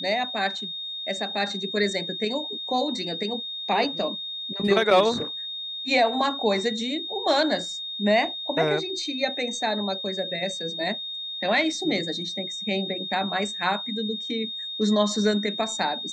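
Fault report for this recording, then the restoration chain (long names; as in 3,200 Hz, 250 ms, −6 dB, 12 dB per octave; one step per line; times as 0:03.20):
whistle 3,700 Hz −31 dBFS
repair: notch filter 3,700 Hz, Q 30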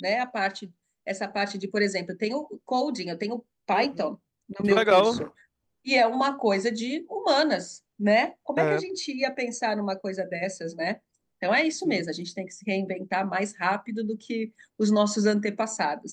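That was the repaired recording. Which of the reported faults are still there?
none of them is left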